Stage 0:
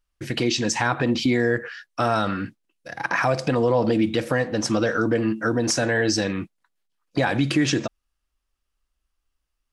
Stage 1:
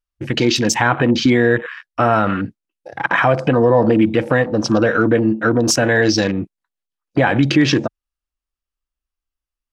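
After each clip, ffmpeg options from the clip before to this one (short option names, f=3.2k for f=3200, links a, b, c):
-af "afwtdn=0.02,volume=7dB"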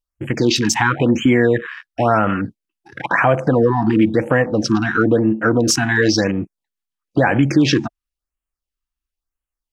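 -af "afftfilt=real='re*(1-between(b*sr/1024,460*pow(4900/460,0.5+0.5*sin(2*PI*0.98*pts/sr))/1.41,460*pow(4900/460,0.5+0.5*sin(2*PI*0.98*pts/sr))*1.41))':imag='im*(1-between(b*sr/1024,460*pow(4900/460,0.5+0.5*sin(2*PI*0.98*pts/sr))/1.41,460*pow(4900/460,0.5+0.5*sin(2*PI*0.98*pts/sr))*1.41))':win_size=1024:overlap=0.75"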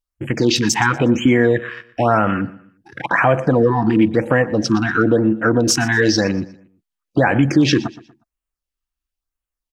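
-af "aecho=1:1:120|240|360:0.112|0.0393|0.0137"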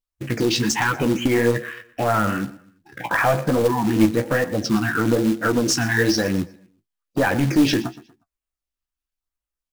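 -af "aeval=exprs='clip(val(0),-1,0.299)':c=same,flanger=delay=9.9:depth=9.5:regen=31:speed=1.1:shape=triangular,acrusher=bits=4:mode=log:mix=0:aa=0.000001"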